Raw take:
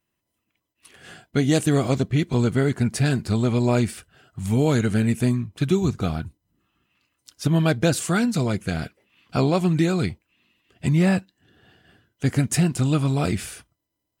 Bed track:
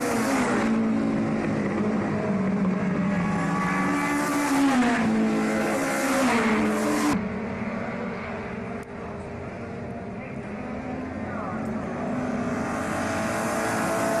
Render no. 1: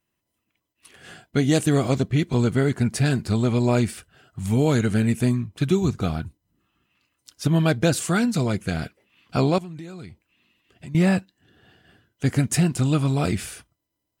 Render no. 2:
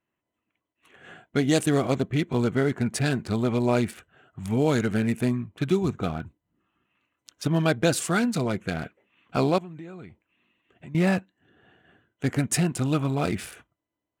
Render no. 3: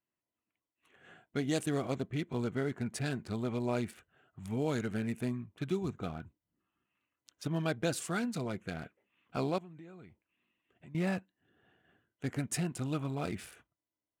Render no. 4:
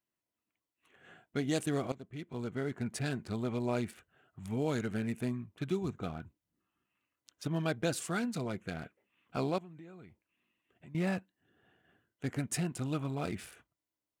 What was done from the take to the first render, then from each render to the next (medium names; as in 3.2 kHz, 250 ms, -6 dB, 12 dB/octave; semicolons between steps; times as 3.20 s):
9.58–10.95 s: compression 3:1, threshold -40 dBFS
local Wiener filter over 9 samples; bass shelf 140 Hz -11 dB
trim -10.5 dB
1.92–2.86 s: fade in, from -15.5 dB